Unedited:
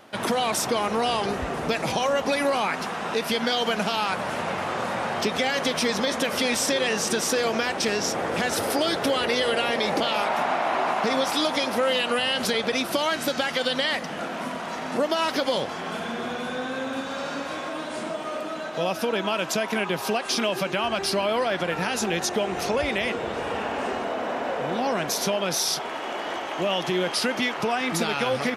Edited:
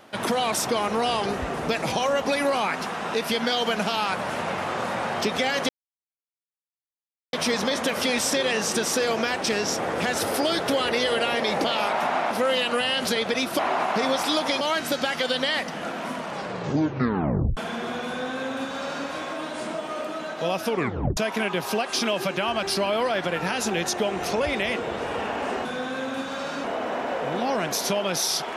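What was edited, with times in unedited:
0:05.69: splice in silence 1.64 s
0:10.67–0:11.69: move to 0:12.97
0:14.53: tape stop 1.40 s
0:16.44–0:17.43: duplicate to 0:24.01
0:19.05: tape stop 0.48 s

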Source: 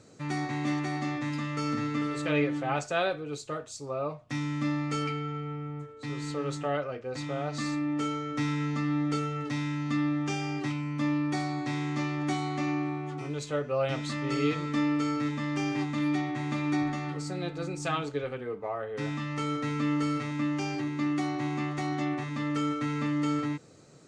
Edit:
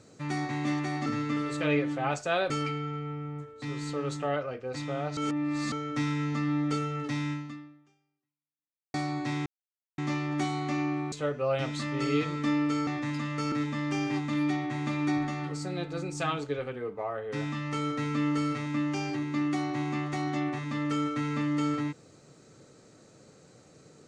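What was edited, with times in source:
0:01.06–0:01.71: move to 0:15.17
0:03.15–0:04.91: remove
0:07.58–0:08.13: reverse
0:09.73–0:11.35: fade out exponential
0:11.87: splice in silence 0.52 s
0:13.01–0:13.42: remove

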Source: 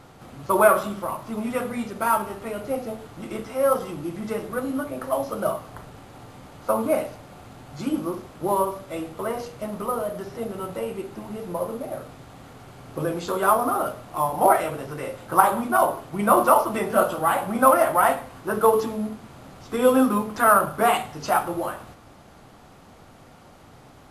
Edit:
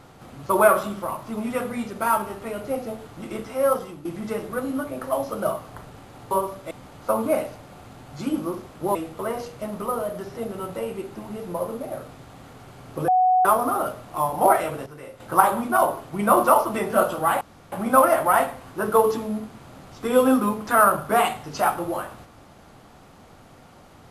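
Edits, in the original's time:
0:03.68–0:04.05: fade out, to −10.5 dB
0:08.55–0:08.95: move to 0:06.31
0:13.08–0:13.45: beep over 740 Hz −14.5 dBFS
0:14.86–0:15.20: clip gain −8.5 dB
0:17.41: splice in room tone 0.31 s

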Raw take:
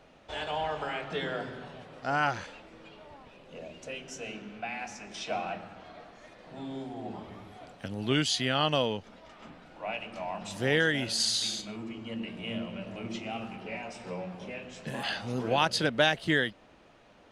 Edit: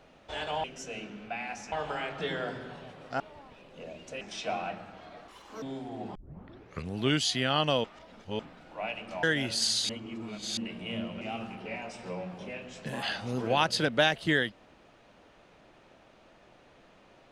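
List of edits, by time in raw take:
0:02.12–0:02.95: remove
0:03.96–0:05.04: move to 0:00.64
0:06.11–0:06.67: play speed 164%
0:07.20: tape start 0.81 s
0:08.89–0:09.44: reverse
0:10.28–0:10.81: remove
0:11.47–0:12.15: reverse
0:12.79–0:13.22: remove

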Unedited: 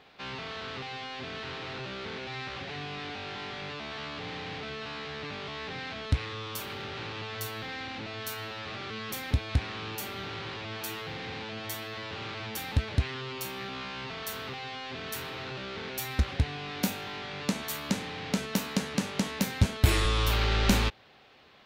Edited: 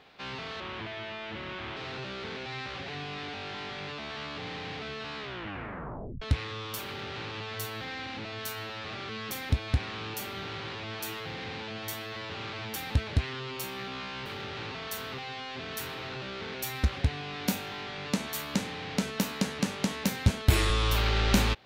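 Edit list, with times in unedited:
0:00.60–0:01.58: play speed 84%
0:05.00: tape stop 1.03 s
0:06.66–0:07.12: duplicate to 0:14.07

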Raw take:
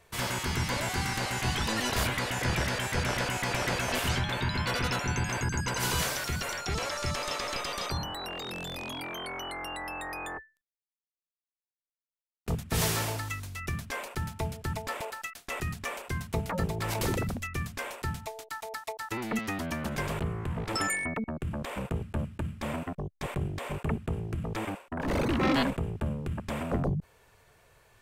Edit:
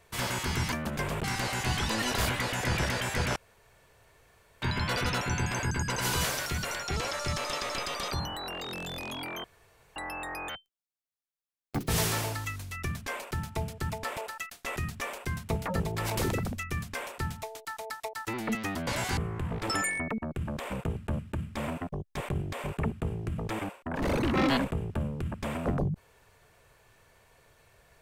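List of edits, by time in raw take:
0:00.72–0:01.02: swap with 0:19.71–0:20.23
0:03.14–0:04.40: fill with room tone
0:09.22–0:09.74: fill with room tone
0:10.27–0:12.72: play speed 176%

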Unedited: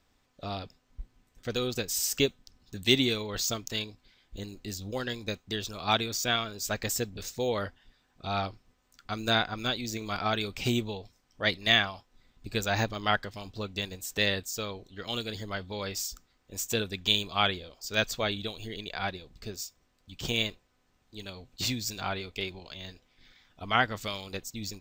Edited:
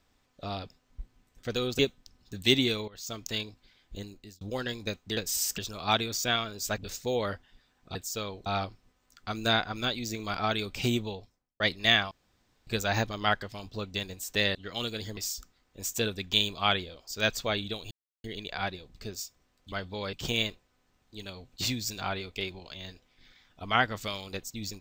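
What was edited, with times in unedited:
0:01.79–0:02.20: move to 0:05.58
0:03.29–0:03.65: fade in quadratic, from −18 dB
0:04.38–0:04.82: fade out
0:06.78–0:07.11: remove
0:10.91–0:11.42: fade out and dull
0:11.93–0:12.49: fill with room tone
0:14.37–0:14.88: move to 0:08.28
0:15.50–0:15.91: move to 0:20.13
0:18.65: splice in silence 0.33 s

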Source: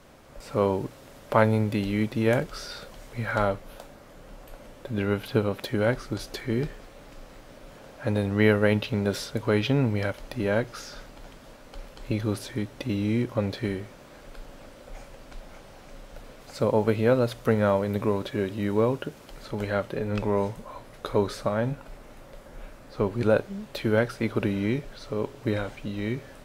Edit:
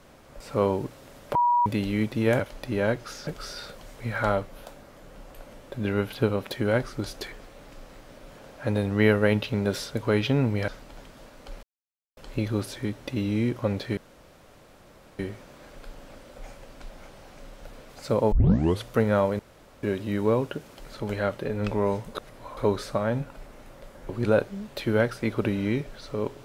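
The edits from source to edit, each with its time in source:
0:01.35–0:01.66: beep over 964 Hz −18 dBFS
0:06.45–0:06.72: remove
0:10.08–0:10.95: move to 0:02.40
0:11.90: splice in silence 0.54 s
0:13.70: splice in room tone 1.22 s
0:16.83: tape start 0.52 s
0:17.90–0:18.34: fill with room tone
0:20.66–0:21.08: reverse
0:22.60–0:23.07: remove

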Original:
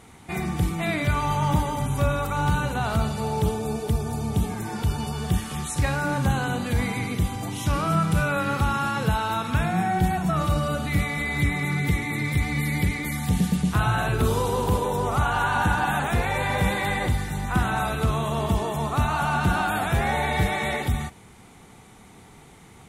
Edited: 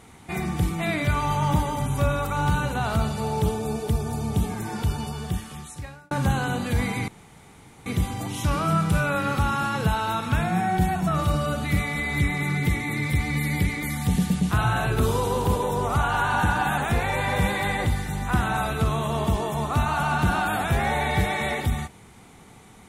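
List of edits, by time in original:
0:04.81–0:06.11: fade out
0:07.08: splice in room tone 0.78 s

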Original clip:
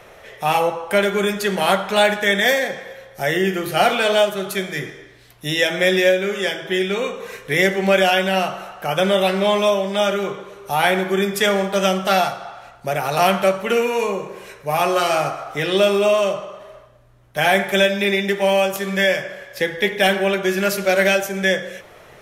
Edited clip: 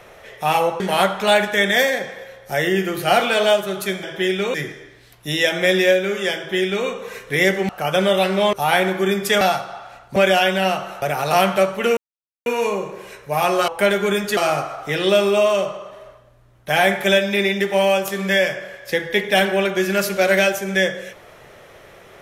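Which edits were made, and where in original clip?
0:00.80–0:01.49: move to 0:15.05
0:06.54–0:07.05: duplicate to 0:04.72
0:07.87–0:08.73: move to 0:12.88
0:09.57–0:10.64: remove
0:11.52–0:12.13: remove
0:13.83: splice in silence 0.49 s

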